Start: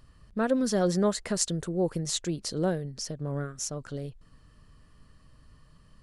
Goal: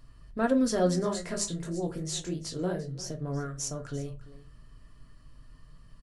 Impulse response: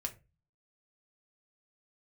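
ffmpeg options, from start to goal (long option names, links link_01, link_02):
-filter_complex "[0:a]asettb=1/sr,asplit=3[link_01][link_02][link_03];[link_01]atrim=end=1.024[link_04];[link_02]atrim=start=1.02:end=3.1,asetpts=PTS-STARTPTS,afade=type=in:duration=0.004:curve=qsin,afade=type=out:start_time=2.076:duration=0.004:curve=qsin,flanger=delay=18:depth=4.9:speed=2.8[link_05];[link_03]atrim=start=3.096[link_06];[link_04][link_05]acrossfade=duration=0.004:curve1=hsin:curve2=qsin[link_07];[link_07][link_06]acrossfade=duration=0.004:curve1=qsin:curve2=hsin,aecho=1:1:344:0.133[link_08];[1:a]atrim=start_sample=2205[link_09];[link_08][link_09]afir=irnorm=-1:irlink=0"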